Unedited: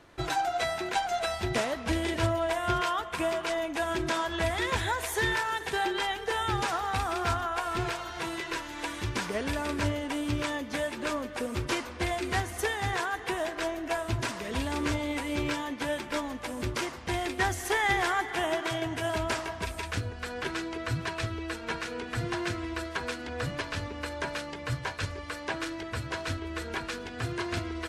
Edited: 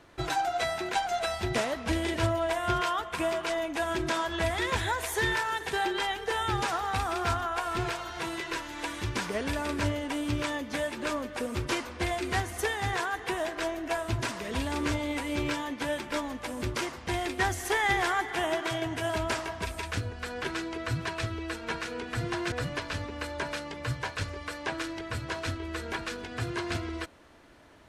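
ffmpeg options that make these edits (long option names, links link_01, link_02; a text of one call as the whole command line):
ffmpeg -i in.wav -filter_complex "[0:a]asplit=2[link_01][link_02];[link_01]atrim=end=22.522[link_03];[link_02]atrim=start=23.338[link_04];[link_03][link_04]acrossfade=duration=0.004:curve1=hsin:curve2=hsin" out.wav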